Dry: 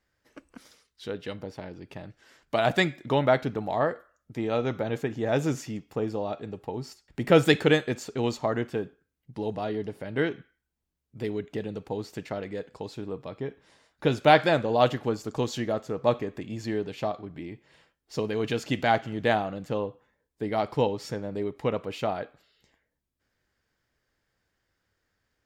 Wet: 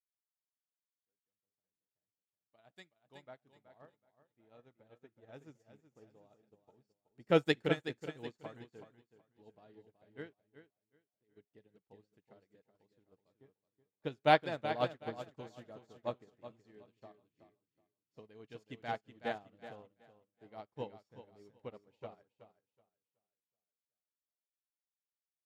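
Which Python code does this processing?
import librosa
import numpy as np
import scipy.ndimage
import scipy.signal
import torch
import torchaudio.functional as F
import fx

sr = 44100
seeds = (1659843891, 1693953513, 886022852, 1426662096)

p1 = fx.fade_in_head(x, sr, length_s=7.56)
p2 = fx.high_shelf(p1, sr, hz=3800.0, db=11.0, at=(2.76, 3.24))
p3 = fx.level_steps(p2, sr, step_db=19, at=(10.33, 11.37))
p4 = fx.low_shelf(p3, sr, hz=420.0, db=-2.5, at=(16.64, 17.2))
p5 = p4 + fx.echo_feedback(p4, sr, ms=374, feedback_pct=50, wet_db=-5.0, dry=0)
p6 = fx.upward_expand(p5, sr, threshold_db=-42.0, expansion=2.5)
y = p6 * librosa.db_to_amplitude(-7.0)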